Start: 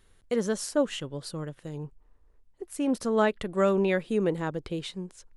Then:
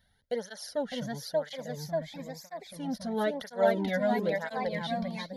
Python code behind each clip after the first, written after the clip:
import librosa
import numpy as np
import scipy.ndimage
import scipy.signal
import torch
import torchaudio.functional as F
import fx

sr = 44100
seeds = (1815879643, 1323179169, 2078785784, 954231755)

y = fx.fixed_phaser(x, sr, hz=1700.0, stages=8)
y = fx.echo_pitch(y, sr, ms=625, semitones=1, count=3, db_per_echo=-3.0)
y = fx.flanger_cancel(y, sr, hz=1.0, depth_ms=2.5)
y = F.gain(torch.from_numpy(y), 2.0).numpy()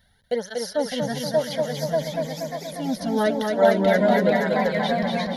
y = fx.echo_feedback(x, sr, ms=238, feedback_pct=58, wet_db=-4.0)
y = F.gain(torch.from_numpy(y), 7.5).numpy()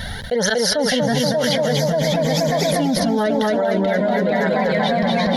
y = fx.high_shelf(x, sr, hz=11000.0, db=-11.0)
y = fx.env_flatten(y, sr, amount_pct=100)
y = F.gain(torch.from_numpy(y), -5.5).numpy()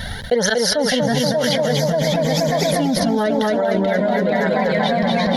y = fx.transient(x, sr, attack_db=5, sustain_db=0)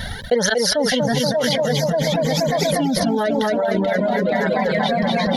y = fx.dereverb_blind(x, sr, rt60_s=0.55)